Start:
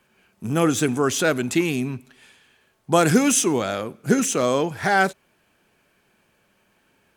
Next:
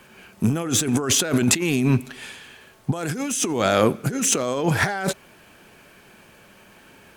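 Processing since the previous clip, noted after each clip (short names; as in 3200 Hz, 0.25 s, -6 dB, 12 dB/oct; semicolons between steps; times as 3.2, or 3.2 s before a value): negative-ratio compressor -29 dBFS, ratio -1; gain +6.5 dB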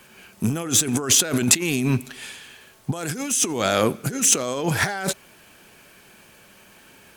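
high shelf 3200 Hz +7.5 dB; gain -2.5 dB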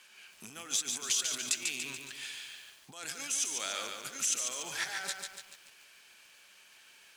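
compressor 3:1, threshold -25 dBFS, peak gain reduction 11 dB; band-pass 4200 Hz, Q 0.72; lo-fi delay 0.144 s, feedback 55%, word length 9-bit, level -4.5 dB; gain -3 dB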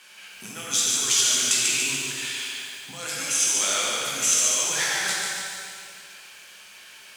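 plate-style reverb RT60 2.2 s, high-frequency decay 0.95×, DRR -5 dB; gain +6 dB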